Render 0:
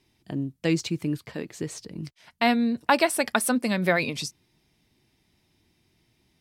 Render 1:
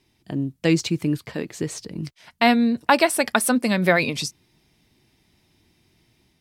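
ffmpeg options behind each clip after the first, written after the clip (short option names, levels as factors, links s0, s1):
-af "dynaudnorm=f=240:g=3:m=1.41,volume=1.26"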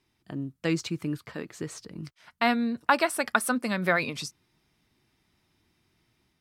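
-af "equalizer=f=1300:t=o:w=0.76:g=8.5,volume=0.376"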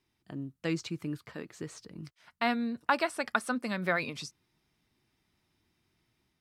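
-filter_complex "[0:a]acrossover=split=8300[s0][s1];[s1]acompressor=threshold=0.002:ratio=4:attack=1:release=60[s2];[s0][s2]amix=inputs=2:normalize=0,volume=0.562"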